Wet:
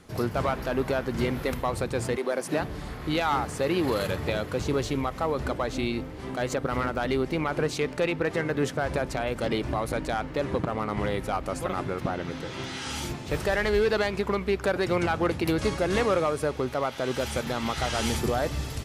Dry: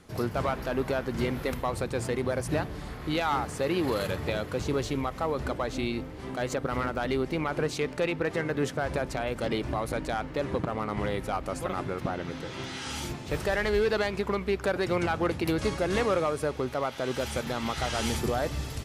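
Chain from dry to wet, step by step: 2.16–2.6 HPF 330 Hz -> 160 Hz 24 dB/oct; gain +2 dB

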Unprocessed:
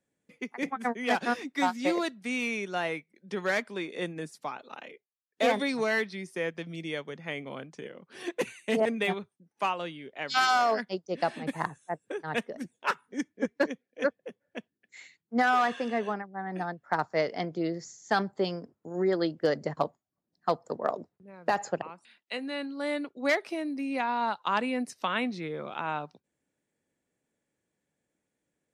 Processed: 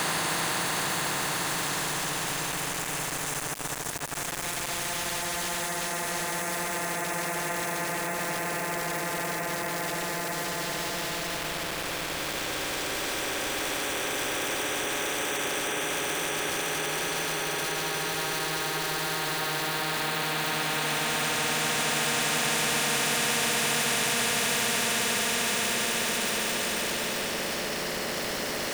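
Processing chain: Paulstretch 34×, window 0.25 s, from 11.68; sample gate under -50.5 dBFS; spectral compressor 4:1; gain +4 dB

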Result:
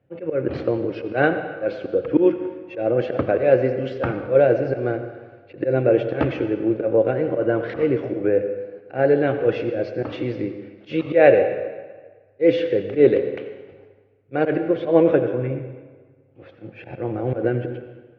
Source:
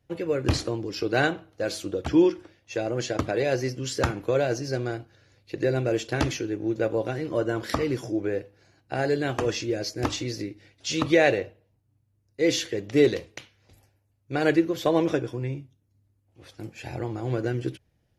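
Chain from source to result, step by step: auto swell 0.106 s; speaker cabinet 120–2400 Hz, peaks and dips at 530 Hz +7 dB, 1000 Hz -6 dB, 1900 Hz -5 dB; reverb RT60 1.5 s, pre-delay 78 ms, DRR 8.5 dB; gain +6 dB

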